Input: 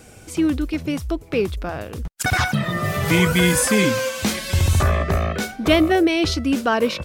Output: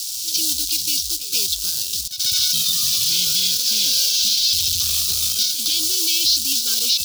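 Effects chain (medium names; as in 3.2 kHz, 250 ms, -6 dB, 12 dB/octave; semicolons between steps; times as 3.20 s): CVSD coder 32 kbps; short-mantissa float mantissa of 2-bit; hard clipper -16.5 dBFS, distortion -12 dB; word length cut 8-bit, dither none; inverse Chebyshev high-pass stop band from 2.1 kHz, stop band 40 dB; pre-echo 138 ms -17.5 dB; loudness maximiser +34 dB; trim -7.5 dB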